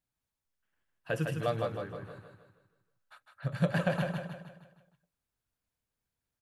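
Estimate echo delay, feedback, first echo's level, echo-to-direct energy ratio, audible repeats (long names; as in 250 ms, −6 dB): 156 ms, 46%, −5.0 dB, −4.0 dB, 5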